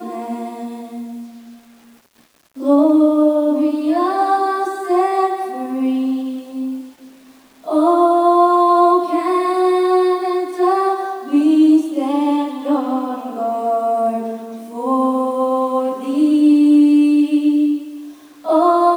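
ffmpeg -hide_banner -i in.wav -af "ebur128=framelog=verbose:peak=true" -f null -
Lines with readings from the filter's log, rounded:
Integrated loudness:
  I:         -15.9 LUFS
  Threshold: -26.8 LUFS
Loudness range:
  LRA:         5.2 LU
  Threshold: -36.6 LUFS
  LRA low:   -19.7 LUFS
  LRA high:  -14.5 LUFS
True peak:
  Peak:       -2.7 dBFS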